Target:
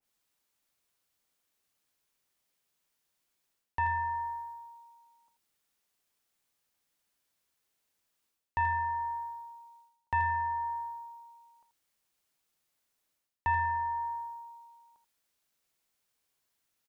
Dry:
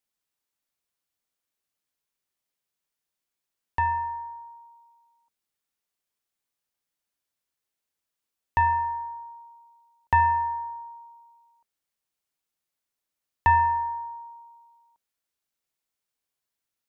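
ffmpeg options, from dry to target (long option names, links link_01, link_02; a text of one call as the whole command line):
ffmpeg -i in.wav -af "areverse,acompressor=threshold=-36dB:ratio=4,areverse,aecho=1:1:83:0.266,adynamicequalizer=threshold=0.00355:dfrequency=1800:dqfactor=0.7:tfrequency=1800:tqfactor=0.7:attack=5:release=100:ratio=0.375:range=3:mode=boostabove:tftype=highshelf,volume=5.5dB" out.wav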